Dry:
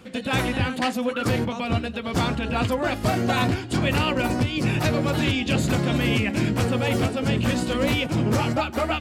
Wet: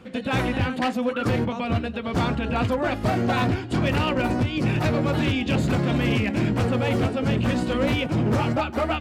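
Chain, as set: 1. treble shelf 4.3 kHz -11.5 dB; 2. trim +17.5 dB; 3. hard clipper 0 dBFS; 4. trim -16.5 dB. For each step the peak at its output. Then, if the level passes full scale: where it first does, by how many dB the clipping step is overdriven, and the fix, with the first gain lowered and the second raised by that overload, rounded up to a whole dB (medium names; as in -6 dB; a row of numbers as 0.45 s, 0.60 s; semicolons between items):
-12.5 dBFS, +5.0 dBFS, 0.0 dBFS, -16.5 dBFS; step 2, 5.0 dB; step 2 +12.5 dB, step 4 -11.5 dB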